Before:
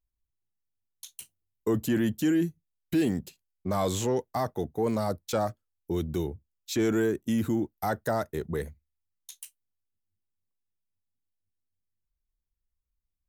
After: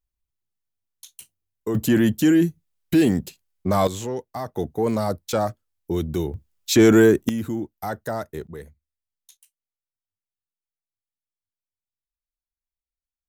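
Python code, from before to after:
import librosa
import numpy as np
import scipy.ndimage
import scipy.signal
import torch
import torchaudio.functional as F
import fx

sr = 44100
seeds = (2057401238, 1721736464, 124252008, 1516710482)

y = fx.gain(x, sr, db=fx.steps((0.0, 0.5), (1.75, 8.0), (3.87, -1.5), (4.54, 5.0), (6.34, 12.0), (7.29, 0.0), (8.47, -6.0), (9.37, -13.0)))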